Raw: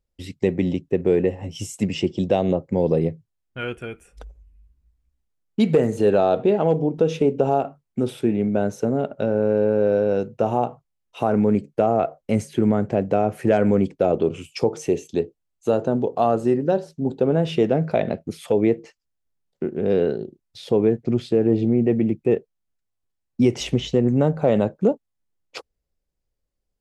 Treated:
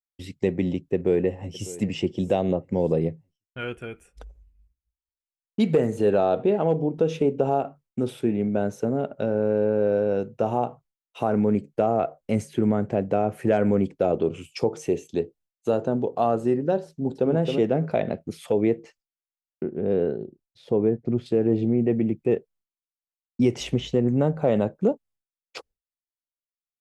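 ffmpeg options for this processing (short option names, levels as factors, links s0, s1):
-filter_complex "[0:a]asplit=2[s0][s1];[s1]afade=t=in:st=0.94:d=0.01,afade=t=out:st=1.73:d=0.01,aecho=0:1:600|1200|1800:0.133352|0.0400056|0.0120017[s2];[s0][s2]amix=inputs=2:normalize=0,asplit=2[s3][s4];[s4]afade=t=in:st=16.88:d=0.01,afade=t=out:st=17.32:d=0.01,aecho=0:1:270|540|810:0.562341|0.112468|0.0224937[s5];[s3][s5]amix=inputs=2:normalize=0,asettb=1/sr,asplit=3[s6][s7][s8];[s6]atrim=end=19.634[s9];[s7]atrim=start=19.63:end=21.26,asetpts=PTS-STARTPTS,afade=t=in:d=0.004:c=qsin,afade=t=out:st=1.626:d=0.004:c=qsin,highshelf=f=2100:g=-12[s10];[s8]atrim=start=21.256[s11];[s9][s10]acrossfade=d=0.004:c1=hsin:c2=qsin[s12];[s12][s11]acrossfade=d=0.004:c1=qsin:c2=hsin,agate=range=0.0224:threshold=0.00447:ratio=3:detection=peak,adynamicequalizer=threshold=0.00398:dfrequency=5100:dqfactor=1.2:tfrequency=5100:tqfactor=1.2:attack=5:release=100:ratio=0.375:range=2.5:mode=cutabove:tftype=bell,volume=0.708"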